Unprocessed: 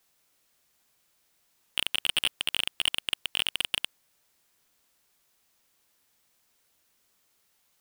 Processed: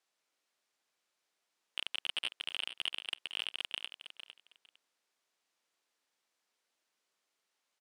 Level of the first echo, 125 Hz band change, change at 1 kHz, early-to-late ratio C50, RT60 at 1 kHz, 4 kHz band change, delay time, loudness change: −11.0 dB, below −20 dB, −8.5 dB, no reverb audible, no reverb audible, −9.5 dB, 455 ms, −9.5 dB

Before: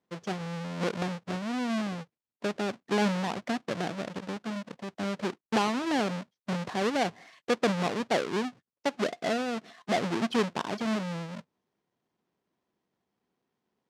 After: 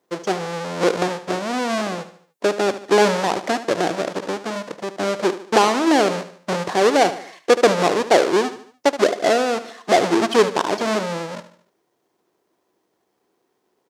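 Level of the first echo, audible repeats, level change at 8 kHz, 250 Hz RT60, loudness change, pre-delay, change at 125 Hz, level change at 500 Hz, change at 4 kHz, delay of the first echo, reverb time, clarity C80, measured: −13.0 dB, 4, +14.0 dB, no reverb audible, +11.5 dB, no reverb audible, +3.0 dB, +14.0 dB, +10.5 dB, 74 ms, no reverb audible, no reverb audible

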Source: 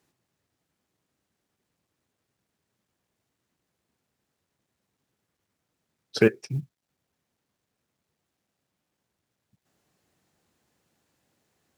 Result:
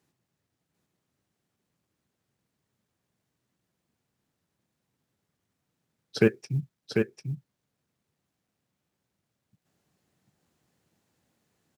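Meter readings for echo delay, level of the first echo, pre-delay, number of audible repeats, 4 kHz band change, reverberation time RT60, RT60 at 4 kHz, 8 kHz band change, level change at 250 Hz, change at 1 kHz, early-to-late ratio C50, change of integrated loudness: 745 ms, −4.5 dB, no reverb audible, 1, −2.0 dB, no reverb audible, no reverb audible, −2.0 dB, +0.5 dB, −2.0 dB, no reverb audible, −3.5 dB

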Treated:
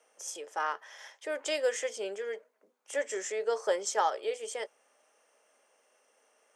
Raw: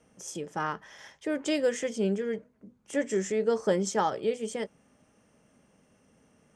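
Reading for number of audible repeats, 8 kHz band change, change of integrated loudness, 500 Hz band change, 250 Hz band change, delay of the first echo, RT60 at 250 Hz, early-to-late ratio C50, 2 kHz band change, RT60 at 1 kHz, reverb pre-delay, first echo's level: no echo audible, +1.0 dB, −3.5 dB, −3.5 dB, −17.5 dB, no echo audible, no reverb audible, no reverb audible, 0.0 dB, no reverb audible, no reverb audible, no echo audible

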